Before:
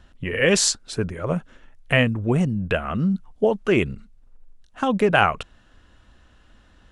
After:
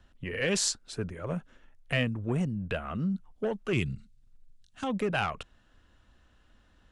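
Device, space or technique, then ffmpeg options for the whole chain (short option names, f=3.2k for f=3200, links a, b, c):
one-band saturation: -filter_complex "[0:a]acrossover=split=240|2100[a][b][c];[b]asoftclip=type=tanh:threshold=-17.5dB[d];[a][d][c]amix=inputs=3:normalize=0,asettb=1/sr,asplit=3[e][f][g];[e]atrim=end=3.734[h];[f]atrim=start=3.73:end=4.84,asetpts=PTS-STARTPTS,afade=t=in:d=0.004:c=qsin,afade=t=out:st=1.106:d=0.004:c=qsin,equalizer=f=125:t=o:w=1:g=8,equalizer=f=500:t=o:w=1:g=-7,equalizer=f=1k:t=o:w=1:g=-7,equalizer=f=4k:t=o:w=1:g=6,equalizer=f=8k:t=o:w=1:g=6[i];[g]atrim=start=4.836[j];[h][i]acrossfade=d=0.004:c1=hsin:c2=qsin[k];[k][j]acrossfade=d=0.004:c1=qsin:c2=hsin,volume=-8.5dB"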